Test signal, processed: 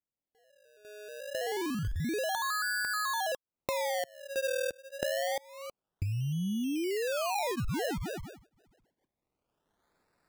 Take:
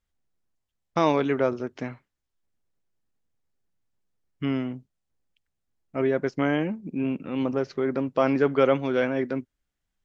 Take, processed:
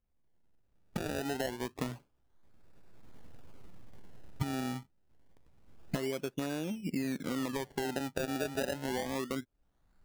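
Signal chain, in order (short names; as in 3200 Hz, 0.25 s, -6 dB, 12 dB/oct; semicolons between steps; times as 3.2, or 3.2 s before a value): recorder AGC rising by 18 dB/s; inverse Chebyshev low-pass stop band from 4600 Hz, stop band 50 dB; notch 1100 Hz, Q 14; compressor 5:1, threshold -33 dBFS; decimation with a swept rate 28×, swing 100% 0.27 Hz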